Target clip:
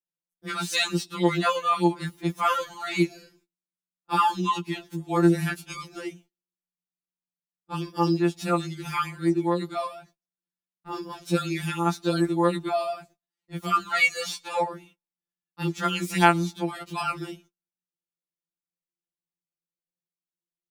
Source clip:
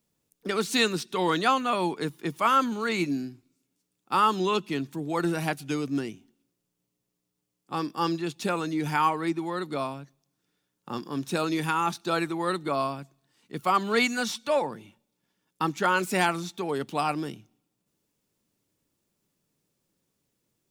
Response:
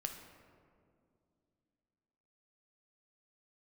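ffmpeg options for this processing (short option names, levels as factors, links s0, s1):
-af "agate=range=0.0501:threshold=0.00282:ratio=16:detection=peak,afftfilt=real='re*2.83*eq(mod(b,8),0)':imag='im*2.83*eq(mod(b,8),0)':win_size=2048:overlap=0.75,volume=1.41"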